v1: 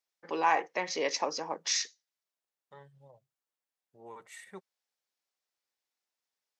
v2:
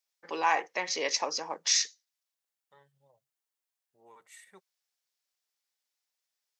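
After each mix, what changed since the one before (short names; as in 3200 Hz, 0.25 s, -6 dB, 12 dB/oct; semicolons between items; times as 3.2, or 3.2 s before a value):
second voice -7.5 dB; master: add tilt +2 dB/oct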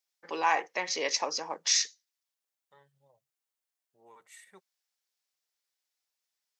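none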